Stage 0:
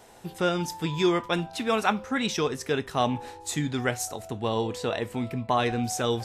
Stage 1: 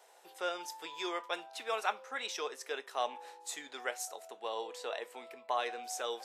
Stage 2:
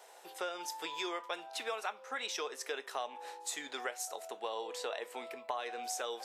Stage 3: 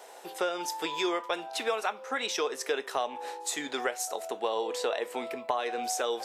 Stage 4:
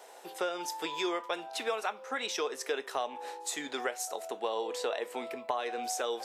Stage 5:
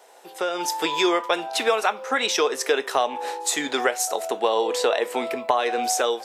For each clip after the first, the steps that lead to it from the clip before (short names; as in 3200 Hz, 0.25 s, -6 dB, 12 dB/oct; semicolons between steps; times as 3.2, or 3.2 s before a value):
HPF 470 Hz 24 dB/oct; gain -8.5 dB
compressor 6:1, threshold -40 dBFS, peak gain reduction 13.5 dB; gain +5 dB
low shelf 350 Hz +11 dB; gain +6 dB
HPF 100 Hz; gain -3 dB
AGC gain up to 12 dB